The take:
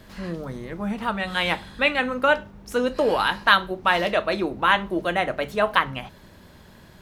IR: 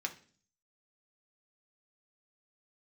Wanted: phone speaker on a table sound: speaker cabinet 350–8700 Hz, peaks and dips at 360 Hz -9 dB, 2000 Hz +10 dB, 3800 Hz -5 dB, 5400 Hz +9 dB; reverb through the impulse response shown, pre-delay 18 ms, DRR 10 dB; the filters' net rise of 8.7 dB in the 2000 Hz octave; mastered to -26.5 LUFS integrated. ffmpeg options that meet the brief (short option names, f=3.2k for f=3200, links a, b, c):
-filter_complex "[0:a]equalizer=f=2k:t=o:g=5,asplit=2[a][b];[1:a]atrim=start_sample=2205,adelay=18[c];[b][c]afir=irnorm=-1:irlink=0,volume=-12dB[d];[a][d]amix=inputs=2:normalize=0,highpass=f=350:w=0.5412,highpass=f=350:w=1.3066,equalizer=f=360:t=q:w=4:g=-9,equalizer=f=2k:t=q:w=4:g=10,equalizer=f=3.8k:t=q:w=4:g=-5,equalizer=f=5.4k:t=q:w=4:g=9,lowpass=f=8.7k:w=0.5412,lowpass=f=8.7k:w=1.3066,volume=-10dB"